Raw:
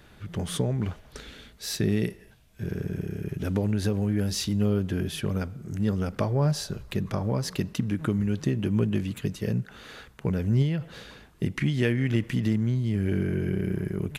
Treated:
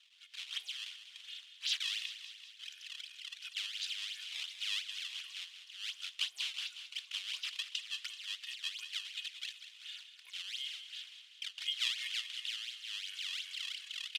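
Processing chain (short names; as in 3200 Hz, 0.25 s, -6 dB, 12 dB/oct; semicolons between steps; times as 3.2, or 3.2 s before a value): comb 2.8 ms, depth 85%; decimation with a swept rate 17×, swing 160% 2.8 Hz; ladder high-pass 2800 Hz, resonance 65%; air absorption 68 m; feedback echo 0.192 s, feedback 60%, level -11 dB; gain +6.5 dB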